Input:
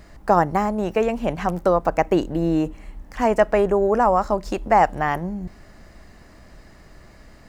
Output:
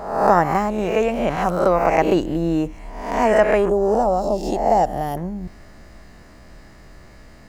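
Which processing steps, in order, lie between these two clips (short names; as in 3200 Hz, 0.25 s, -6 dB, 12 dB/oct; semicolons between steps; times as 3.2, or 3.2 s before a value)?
spectral swells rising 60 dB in 0.79 s; 3.69–5.17 band shelf 1600 Hz -15.5 dB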